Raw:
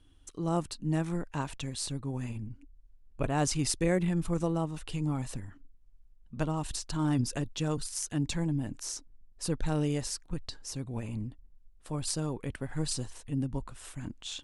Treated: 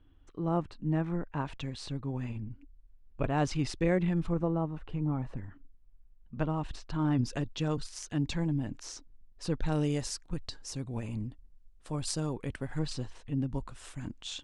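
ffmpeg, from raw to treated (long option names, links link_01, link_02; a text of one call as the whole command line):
ffmpeg -i in.wav -af "asetnsamples=nb_out_samples=441:pad=0,asendcmd='1.46 lowpass f 3600;4.33 lowpass f 1500;5.37 lowpass f 2700;7.22 lowpass f 4800;9.72 lowpass f 8400;12.79 lowpass f 4000;13.5 lowpass f 7800',lowpass=2100" out.wav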